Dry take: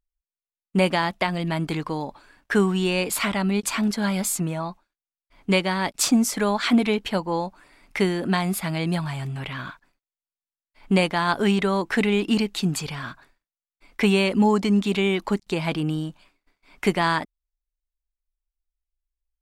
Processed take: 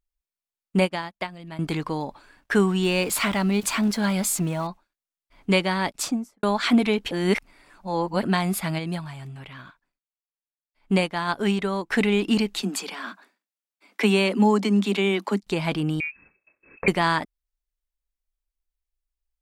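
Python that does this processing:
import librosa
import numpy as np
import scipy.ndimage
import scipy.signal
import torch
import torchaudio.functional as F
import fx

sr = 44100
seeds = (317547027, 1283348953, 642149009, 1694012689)

y = fx.upward_expand(x, sr, threshold_db=-39.0, expansion=2.5, at=(0.8, 1.59))
y = fx.zero_step(y, sr, step_db=-38.5, at=(2.83, 4.67))
y = fx.studio_fade_out(y, sr, start_s=5.81, length_s=0.62)
y = fx.upward_expand(y, sr, threshold_db=-42.0, expansion=1.5, at=(8.78, 11.9), fade=0.02)
y = fx.steep_highpass(y, sr, hz=190.0, slope=96, at=(12.62, 15.43))
y = fx.freq_invert(y, sr, carrier_hz=2600, at=(16.0, 16.88))
y = fx.edit(y, sr, fx.reverse_span(start_s=7.11, length_s=1.12), tone=tone)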